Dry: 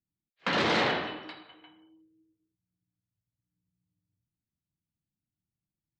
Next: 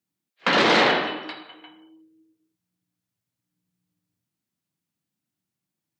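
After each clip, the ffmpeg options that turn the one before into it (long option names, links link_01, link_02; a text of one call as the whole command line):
ffmpeg -i in.wav -af "highpass=200,volume=8.5dB" out.wav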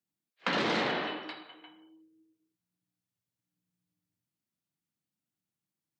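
ffmpeg -i in.wav -filter_complex "[0:a]acrossover=split=270[link_01][link_02];[link_02]acompressor=threshold=-21dB:ratio=6[link_03];[link_01][link_03]amix=inputs=2:normalize=0,volume=-6.5dB" out.wav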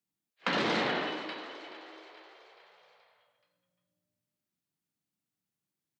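ffmpeg -i in.wav -filter_complex "[0:a]asplit=6[link_01][link_02][link_03][link_04][link_05][link_06];[link_02]adelay=427,afreqshift=56,volume=-13.5dB[link_07];[link_03]adelay=854,afreqshift=112,volume=-18.9dB[link_08];[link_04]adelay=1281,afreqshift=168,volume=-24.2dB[link_09];[link_05]adelay=1708,afreqshift=224,volume=-29.6dB[link_10];[link_06]adelay=2135,afreqshift=280,volume=-34.9dB[link_11];[link_01][link_07][link_08][link_09][link_10][link_11]amix=inputs=6:normalize=0" out.wav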